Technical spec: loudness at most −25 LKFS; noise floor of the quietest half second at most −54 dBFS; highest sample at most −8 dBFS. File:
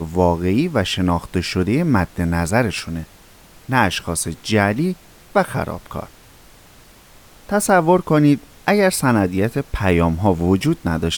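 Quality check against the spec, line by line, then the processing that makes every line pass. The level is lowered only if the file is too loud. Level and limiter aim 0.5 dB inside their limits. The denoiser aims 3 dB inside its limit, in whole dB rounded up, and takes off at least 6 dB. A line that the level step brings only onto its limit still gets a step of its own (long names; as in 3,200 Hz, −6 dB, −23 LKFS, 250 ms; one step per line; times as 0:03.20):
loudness −18.5 LKFS: out of spec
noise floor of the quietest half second −46 dBFS: out of spec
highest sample −2.0 dBFS: out of spec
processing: broadband denoise 6 dB, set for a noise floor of −46 dBFS
level −7 dB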